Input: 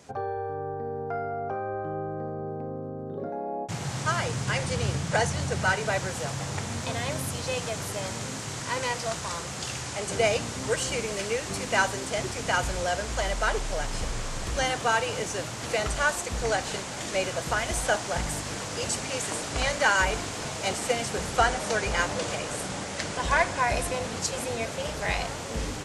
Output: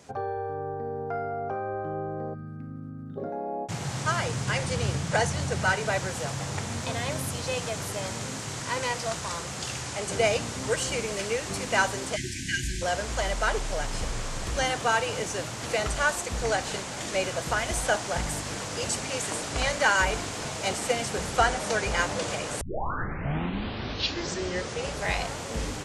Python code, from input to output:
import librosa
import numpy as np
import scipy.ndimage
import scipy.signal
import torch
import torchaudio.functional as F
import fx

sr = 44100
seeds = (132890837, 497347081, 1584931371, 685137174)

y = fx.spec_box(x, sr, start_s=2.34, length_s=0.82, low_hz=320.0, high_hz=1200.0, gain_db=-22)
y = fx.brickwall_bandstop(y, sr, low_hz=380.0, high_hz=1500.0, at=(12.15, 12.81), fade=0.02)
y = fx.edit(y, sr, fx.tape_start(start_s=22.61, length_s=2.44), tone=tone)